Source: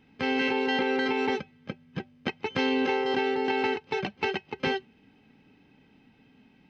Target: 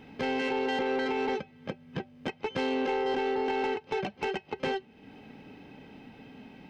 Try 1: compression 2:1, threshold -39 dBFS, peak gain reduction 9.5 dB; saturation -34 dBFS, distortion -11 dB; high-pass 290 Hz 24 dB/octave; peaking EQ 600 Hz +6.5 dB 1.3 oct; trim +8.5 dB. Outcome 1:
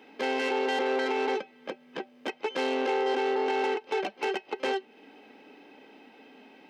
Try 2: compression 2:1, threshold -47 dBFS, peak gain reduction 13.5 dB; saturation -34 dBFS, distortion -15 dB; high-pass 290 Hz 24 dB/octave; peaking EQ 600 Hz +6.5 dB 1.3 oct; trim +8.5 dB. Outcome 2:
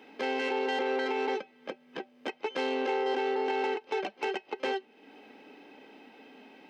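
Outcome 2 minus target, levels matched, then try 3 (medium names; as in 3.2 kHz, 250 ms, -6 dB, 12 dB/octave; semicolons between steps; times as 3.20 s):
250 Hz band -4.0 dB
compression 2:1, threshold -47 dBFS, peak gain reduction 13.5 dB; saturation -34 dBFS, distortion -15 dB; peaking EQ 600 Hz +6.5 dB 1.3 oct; trim +8.5 dB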